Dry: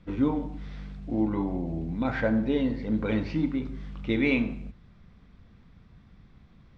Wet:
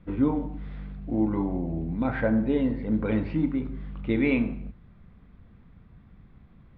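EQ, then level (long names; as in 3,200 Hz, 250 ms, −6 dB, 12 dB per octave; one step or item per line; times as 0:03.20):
high-frequency loss of the air 360 metres
+2.0 dB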